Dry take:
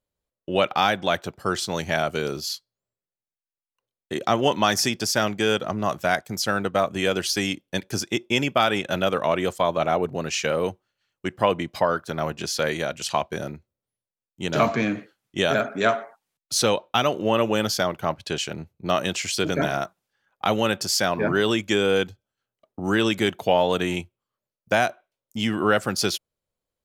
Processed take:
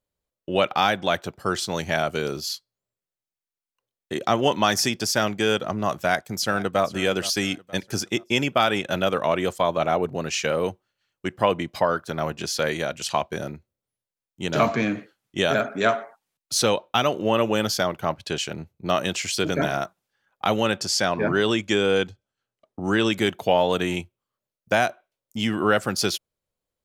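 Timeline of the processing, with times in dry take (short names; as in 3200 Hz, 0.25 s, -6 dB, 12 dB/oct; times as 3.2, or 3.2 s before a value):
5.95–6.82 echo throw 0.47 s, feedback 45%, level -17 dB
20.63–23.13 LPF 9300 Hz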